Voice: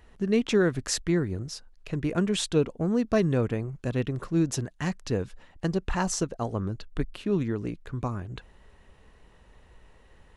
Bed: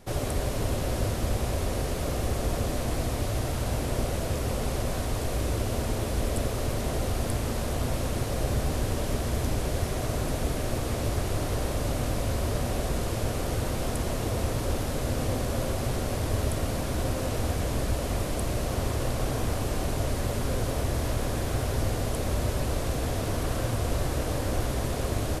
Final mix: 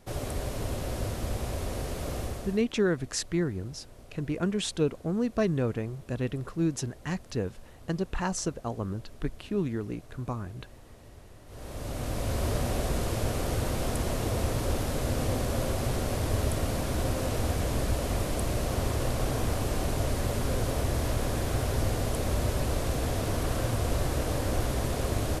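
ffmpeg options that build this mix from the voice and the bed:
-filter_complex "[0:a]adelay=2250,volume=-3dB[a];[1:a]volume=18.5dB,afade=t=out:st=2.19:d=0.46:silence=0.112202,afade=t=in:st=11.46:d=1:silence=0.0707946[b];[a][b]amix=inputs=2:normalize=0"

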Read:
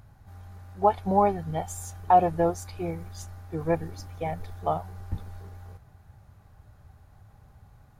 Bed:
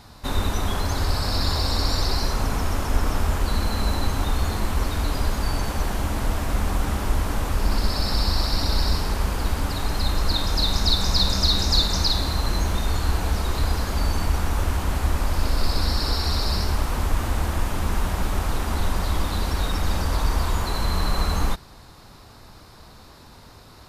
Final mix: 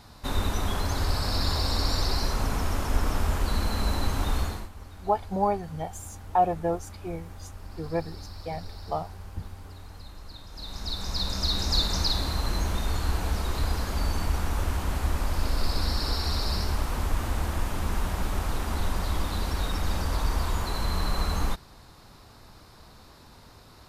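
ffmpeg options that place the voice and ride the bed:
-filter_complex "[0:a]adelay=4250,volume=-3.5dB[a];[1:a]volume=14dB,afade=t=out:st=4.38:d=0.31:silence=0.11885,afade=t=in:st=10.5:d=1.37:silence=0.133352[b];[a][b]amix=inputs=2:normalize=0"

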